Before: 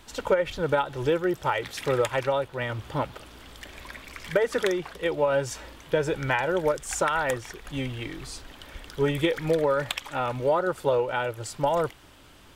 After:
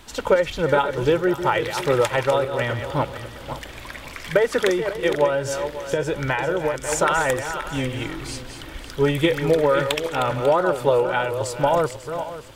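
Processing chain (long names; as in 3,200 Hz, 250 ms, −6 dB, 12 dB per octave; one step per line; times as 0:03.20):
feedback delay that plays each chunk backwards 272 ms, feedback 49%, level −8.5 dB
0:05.26–0:06.92: downward compressor 5 to 1, threshold −24 dBFS, peak gain reduction 6 dB
level +5 dB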